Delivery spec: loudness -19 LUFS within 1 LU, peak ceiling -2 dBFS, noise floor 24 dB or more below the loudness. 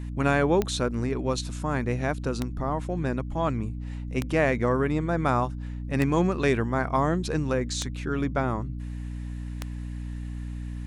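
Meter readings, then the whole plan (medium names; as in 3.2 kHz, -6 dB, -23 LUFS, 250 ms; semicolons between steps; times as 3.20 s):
clicks found 6; hum 60 Hz; highest harmonic 300 Hz; hum level -31 dBFS; loudness -27.5 LUFS; peak level -8.5 dBFS; loudness target -19.0 LUFS
-> de-click; de-hum 60 Hz, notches 5; trim +8.5 dB; peak limiter -2 dBFS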